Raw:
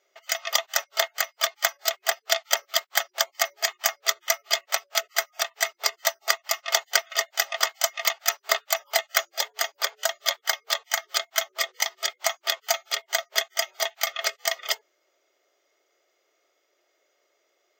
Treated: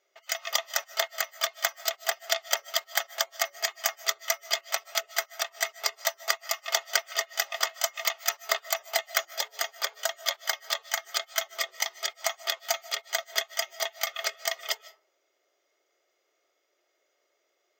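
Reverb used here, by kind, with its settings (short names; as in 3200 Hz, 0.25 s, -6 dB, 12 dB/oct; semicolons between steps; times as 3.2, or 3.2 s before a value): digital reverb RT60 0.46 s, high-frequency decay 0.4×, pre-delay 0.11 s, DRR 19 dB; gain -4 dB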